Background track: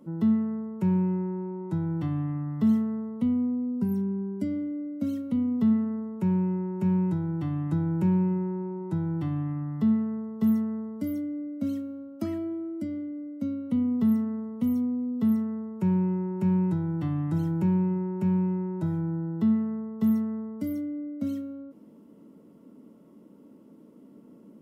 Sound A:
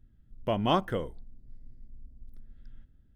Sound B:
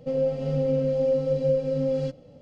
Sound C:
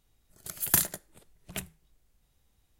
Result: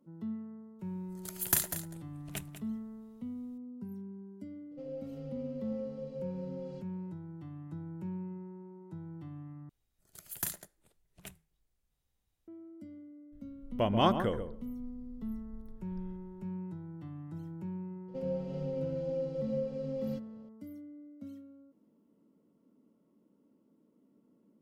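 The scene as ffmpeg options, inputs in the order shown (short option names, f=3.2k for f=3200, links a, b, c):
-filter_complex "[3:a]asplit=2[a][b];[2:a]asplit=2[c][d];[0:a]volume=-16dB[e];[a]aecho=1:1:195:0.266[f];[1:a]asplit=2[g][h];[h]adelay=134,lowpass=f=1.1k:p=1,volume=-7.5dB,asplit=2[i][j];[j]adelay=134,lowpass=f=1.1k:p=1,volume=0.18,asplit=2[k][l];[l]adelay=134,lowpass=f=1.1k:p=1,volume=0.18[m];[g][i][k][m]amix=inputs=4:normalize=0[n];[e]asplit=2[o][p];[o]atrim=end=9.694[q];[b]atrim=end=2.79,asetpts=PTS-STARTPTS,volume=-12dB[r];[p]atrim=start=12.476[s];[f]atrim=end=2.79,asetpts=PTS-STARTPTS,volume=-4.5dB,afade=t=in:d=0.004:c=hsin,afade=t=out:st=2.786:d=0.004:c=hsin,adelay=790[t];[c]atrim=end=2.41,asetpts=PTS-STARTPTS,volume=-18dB,afade=t=in:d=0.004:c=hsin,afade=t=out:st=2.406:d=0.004:c=hsin,adelay=4710[u];[n]atrim=end=3.15,asetpts=PTS-STARTPTS,volume=-1dB,afade=t=in:d=0.004:c=hsin,afade=t=out:st=3.146:d=0.004:c=hsin,adelay=587412S[v];[d]atrim=end=2.41,asetpts=PTS-STARTPTS,volume=-12dB,afade=t=in:d=0.004:c=hsin,afade=t=out:st=2.406:d=0.004:c=hsin,adelay=18080[w];[q][r]acrossfade=d=0.004:c1=hsin:c2=hsin[x];[x][s]acrossfade=d=0.004:c1=hsin:c2=hsin[y];[y][t][u][v][w]amix=inputs=5:normalize=0"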